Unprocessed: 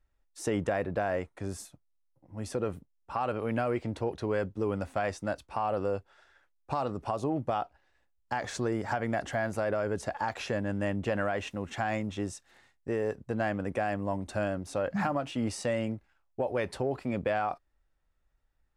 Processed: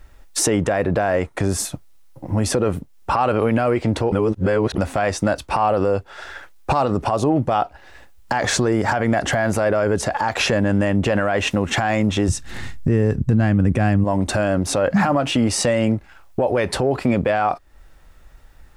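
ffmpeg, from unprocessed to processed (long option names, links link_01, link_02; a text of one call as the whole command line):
ffmpeg -i in.wav -filter_complex "[0:a]asplit=3[link_01][link_02][link_03];[link_01]afade=type=out:start_time=12.28:duration=0.02[link_04];[link_02]asubboost=boost=6.5:cutoff=220,afade=type=in:start_time=12.28:duration=0.02,afade=type=out:start_time=14.03:duration=0.02[link_05];[link_03]afade=type=in:start_time=14.03:duration=0.02[link_06];[link_04][link_05][link_06]amix=inputs=3:normalize=0,asplit=3[link_07][link_08][link_09];[link_07]atrim=end=4.122[link_10];[link_08]atrim=start=4.118:end=4.782,asetpts=PTS-STARTPTS,areverse[link_11];[link_09]atrim=start=4.778[link_12];[link_10][link_11]acrossfade=duration=0.004:curve1=hsin:curve2=hsin[link_13];[link_13][link_12]acrossfade=duration=0.004:curve1=hsin:curve2=hsin,acompressor=threshold=-46dB:ratio=2.5,alimiter=level_in=35.5dB:limit=-1dB:release=50:level=0:latency=1,volume=-8dB" out.wav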